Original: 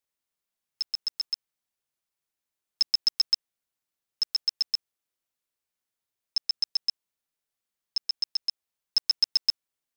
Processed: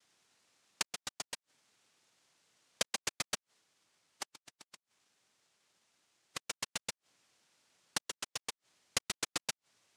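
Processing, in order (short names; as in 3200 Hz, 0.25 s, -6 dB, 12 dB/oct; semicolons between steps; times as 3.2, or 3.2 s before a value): flipped gate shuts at -25 dBFS, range -35 dB; spectral delete 3.6–6.47, 2600–6200 Hz; noise vocoder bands 1; limiter -30 dBFS, peak gain reduction 9.5 dB; gain +14 dB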